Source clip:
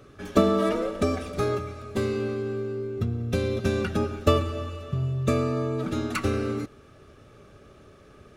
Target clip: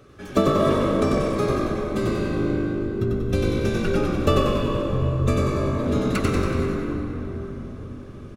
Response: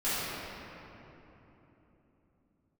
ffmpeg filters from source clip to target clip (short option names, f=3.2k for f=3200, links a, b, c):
-filter_complex "[0:a]asplit=8[a][b][c][d][e][f][g][h];[b]adelay=94,afreqshift=-50,volume=-3dB[i];[c]adelay=188,afreqshift=-100,volume=-8.4dB[j];[d]adelay=282,afreqshift=-150,volume=-13.7dB[k];[e]adelay=376,afreqshift=-200,volume=-19.1dB[l];[f]adelay=470,afreqshift=-250,volume=-24.4dB[m];[g]adelay=564,afreqshift=-300,volume=-29.8dB[n];[h]adelay=658,afreqshift=-350,volume=-35.1dB[o];[a][i][j][k][l][m][n][o]amix=inputs=8:normalize=0,asplit=2[p][q];[1:a]atrim=start_sample=2205,asetrate=33075,aresample=44100,adelay=88[r];[q][r]afir=irnorm=-1:irlink=0,volume=-16dB[s];[p][s]amix=inputs=2:normalize=0"